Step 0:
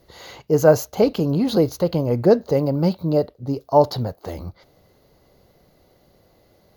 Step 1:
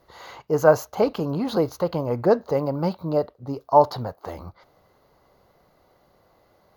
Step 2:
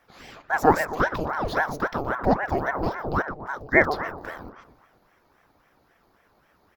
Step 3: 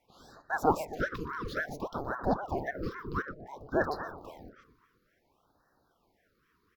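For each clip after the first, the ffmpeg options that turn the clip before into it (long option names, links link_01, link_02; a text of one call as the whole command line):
ffmpeg -i in.wav -af "equalizer=frequency=1100:width_type=o:width=1.5:gain=12,volume=-7dB" out.wav
ffmpeg -i in.wav -filter_complex "[0:a]asplit=2[link_01][link_02];[link_02]adelay=121,lowpass=frequency=1100:poles=1,volume=-9dB,asplit=2[link_03][link_04];[link_04]adelay=121,lowpass=frequency=1100:poles=1,volume=0.54,asplit=2[link_05][link_06];[link_06]adelay=121,lowpass=frequency=1100:poles=1,volume=0.54,asplit=2[link_07][link_08];[link_08]adelay=121,lowpass=frequency=1100:poles=1,volume=0.54,asplit=2[link_09][link_10];[link_10]adelay=121,lowpass=frequency=1100:poles=1,volume=0.54,asplit=2[link_11][link_12];[link_12]adelay=121,lowpass=frequency=1100:poles=1,volume=0.54[link_13];[link_01][link_03][link_05][link_07][link_09][link_11][link_13]amix=inputs=7:normalize=0,aeval=exprs='val(0)*sin(2*PI*700*n/s+700*0.8/3.7*sin(2*PI*3.7*n/s))':channel_layout=same" out.wav
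ffmpeg -i in.wav -af "afftfilt=real='re*(1-between(b*sr/1024,660*pow(2700/660,0.5+0.5*sin(2*PI*0.57*pts/sr))/1.41,660*pow(2700/660,0.5+0.5*sin(2*PI*0.57*pts/sr))*1.41))':imag='im*(1-between(b*sr/1024,660*pow(2700/660,0.5+0.5*sin(2*PI*0.57*pts/sr))/1.41,660*pow(2700/660,0.5+0.5*sin(2*PI*0.57*pts/sr))*1.41))':win_size=1024:overlap=0.75,volume=-8dB" out.wav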